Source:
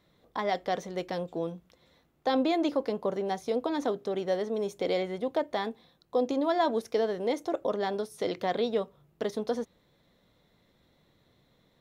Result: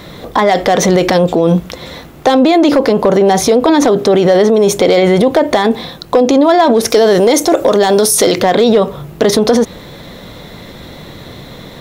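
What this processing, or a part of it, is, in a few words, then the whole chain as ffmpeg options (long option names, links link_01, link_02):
loud club master: -filter_complex "[0:a]asettb=1/sr,asplit=3[link_01][link_02][link_03];[link_01]atrim=end=6.904[link_04];[link_02]atrim=start=6.9:end=8.39,asetpts=PTS-STARTPTS,afade=type=in:duration=0.004:curve=qsin,afade=type=out:start_time=1.486:duration=0.004:curve=qsin,bass=frequency=250:gain=-2,treble=frequency=4000:gain=9[link_05];[link_03]atrim=start=8.386[link_06];[link_04][link_05]acrossfade=duration=0.004:curve1=hsin:curve2=qsin[link_07];[link_07][link_06]acrossfade=duration=0.004:curve1=qsin:curve2=hsin,acompressor=threshold=-29dB:ratio=3,asoftclip=type=hard:threshold=-24dB,alimiter=level_in=36dB:limit=-1dB:release=50:level=0:latency=1,volume=-1dB"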